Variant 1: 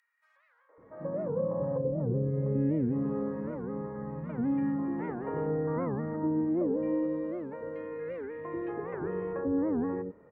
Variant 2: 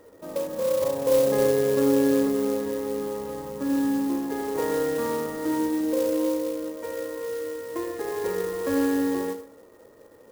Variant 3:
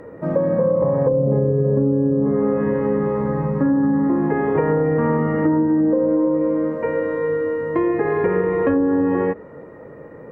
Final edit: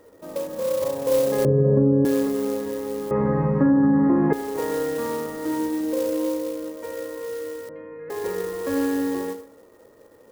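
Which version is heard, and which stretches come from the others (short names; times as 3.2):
2
1.45–2.05 from 3
3.11–4.33 from 3
7.69–8.1 from 1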